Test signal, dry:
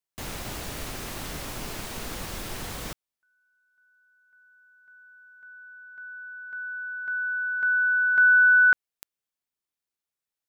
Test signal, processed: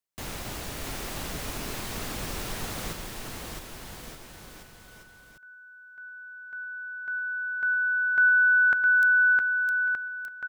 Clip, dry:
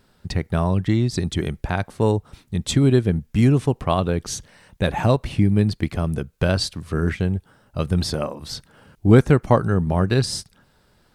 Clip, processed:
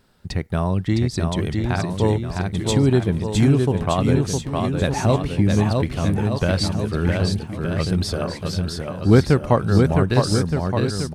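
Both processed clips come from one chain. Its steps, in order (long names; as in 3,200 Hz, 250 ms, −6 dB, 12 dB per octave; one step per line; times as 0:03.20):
bouncing-ball delay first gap 660 ms, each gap 0.85×, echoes 5
level −1 dB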